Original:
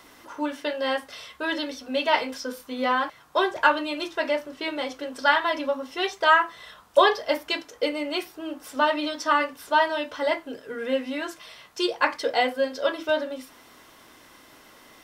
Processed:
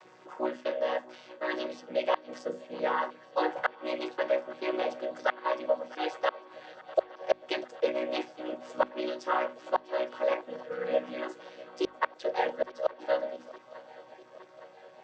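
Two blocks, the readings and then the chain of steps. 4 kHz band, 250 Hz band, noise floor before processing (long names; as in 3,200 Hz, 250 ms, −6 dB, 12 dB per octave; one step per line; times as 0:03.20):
−13.0 dB, −8.5 dB, −53 dBFS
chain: channel vocoder with a chord as carrier major triad, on B2
gate with flip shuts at −11 dBFS, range −35 dB
low shelf with overshoot 370 Hz −7 dB, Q 1.5
mains-hum notches 50/100/150/200/250 Hz
speech leveller within 3 dB 0.5 s
gain on a spectral selection 0:02.39–0:02.75, 620–6,300 Hz −7 dB
feedback echo with a long and a short gap by turns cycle 864 ms, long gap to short 3 to 1, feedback 67%, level −20.5 dB
level −2.5 dB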